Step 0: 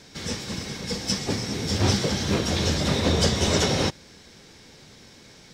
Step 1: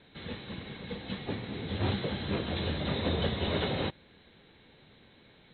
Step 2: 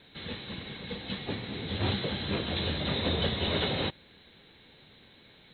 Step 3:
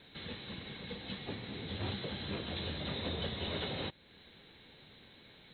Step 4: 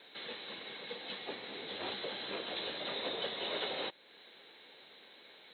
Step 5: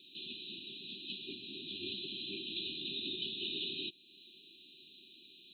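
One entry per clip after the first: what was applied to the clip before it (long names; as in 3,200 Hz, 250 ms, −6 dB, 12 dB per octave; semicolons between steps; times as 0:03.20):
Chebyshev low-pass filter 4,100 Hz, order 10; level −7.5 dB
high-shelf EQ 3,500 Hz +10.5 dB
downward compressor 1.5 to 1, threshold −46 dBFS, peak gain reduction 8 dB; level −1.5 dB
Chebyshev high-pass filter 480 Hz, order 2; level +3 dB
linear-phase brick-wall band-stop 400–2,400 Hz; level +1.5 dB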